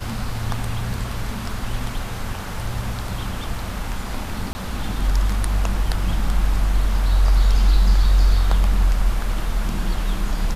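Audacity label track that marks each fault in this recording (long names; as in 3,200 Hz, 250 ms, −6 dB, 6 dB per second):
4.530000	4.550000	drop-out 20 ms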